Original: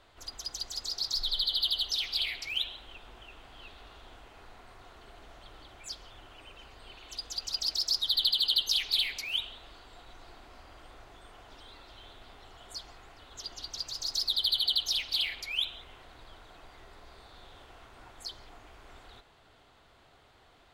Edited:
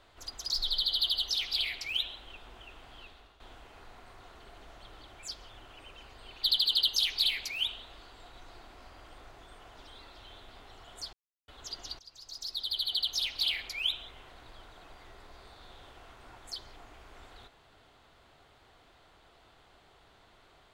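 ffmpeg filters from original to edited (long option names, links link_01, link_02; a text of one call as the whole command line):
ffmpeg -i in.wav -filter_complex "[0:a]asplit=7[link_01][link_02][link_03][link_04][link_05][link_06][link_07];[link_01]atrim=end=0.502[link_08];[link_02]atrim=start=1.108:end=4.01,asetpts=PTS-STARTPTS,afade=type=out:start_time=2.442:duration=0.46:silence=0.223872[link_09];[link_03]atrim=start=4.01:end=7.042,asetpts=PTS-STARTPTS,afade=type=in:duration=0.004:curve=hsin:silence=0.223872[link_10];[link_04]atrim=start=8.158:end=12.86,asetpts=PTS-STARTPTS,afade=type=out:start_time=4.698:duration=0.004:curve=hsin[link_11];[link_05]atrim=start=12.86:end=13.21,asetpts=PTS-STARTPTS,volume=0[link_12];[link_06]atrim=start=13.21:end=13.72,asetpts=PTS-STARTPTS,afade=type=in:duration=0.004:curve=hsin,afade=type=out:start_time=0.506:duration=0.004:curve=hsin:silence=0.112202[link_13];[link_07]atrim=start=13.72,asetpts=PTS-STARTPTS,afade=type=in:duration=1.5:silence=0.112202[link_14];[link_09][link_10]concat=n=2:v=0:a=1[link_15];[link_08][link_15]acrossfade=duration=0.004:curve1=hsin:curve2=hsin[link_16];[link_11][link_12][link_13][link_14]concat=n=4:v=0:a=1[link_17];[link_16][link_17]acrossfade=duration=0.004:curve1=hsin:curve2=hsin" out.wav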